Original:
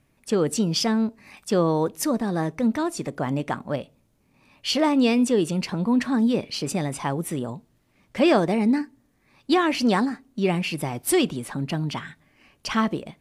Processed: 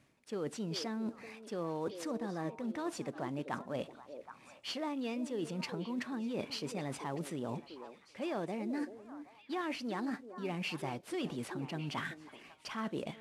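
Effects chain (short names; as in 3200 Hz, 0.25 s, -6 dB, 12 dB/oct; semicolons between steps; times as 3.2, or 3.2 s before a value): CVSD 64 kbps; high shelf 8100 Hz -11 dB; reverse; compressor 10:1, threshold -34 dBFS, peak gain reduction 19.5 dB; reverse; HPF 180 Hz 6 dB/oct; on a send: delay with a stepping band-pass 0.385 s, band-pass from 420 Hz, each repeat 1.4 oct, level -7 dB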